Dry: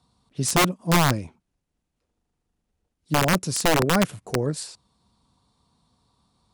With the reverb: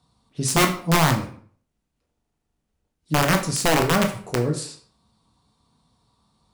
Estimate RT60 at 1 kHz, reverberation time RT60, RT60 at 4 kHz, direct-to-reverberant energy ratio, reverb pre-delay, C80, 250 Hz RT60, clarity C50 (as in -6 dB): 0.50 s, 0.50 s, 0.40 s, 3.5 dB, 13 ms, 13.0 dB, 0.55 s, 9.5 dB